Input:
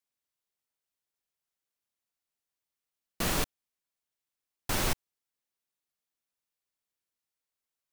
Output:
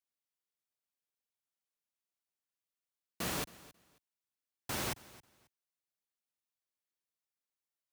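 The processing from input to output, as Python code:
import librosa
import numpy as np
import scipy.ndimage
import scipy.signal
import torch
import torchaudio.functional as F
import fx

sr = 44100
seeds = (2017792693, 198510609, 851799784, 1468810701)

p1 = scipy.signal.sosfilt(scipy.signal.butter(2, 83.0, 'highpass', fs=sr, output='sos'), x)
p2 = p1 + fx.echo_feedback(p1, sr, ms=270, feedback_pct=21, wet_db=-20.0, dry=0)
y = p2 * 10.0 ** (-6.5 / 20.0)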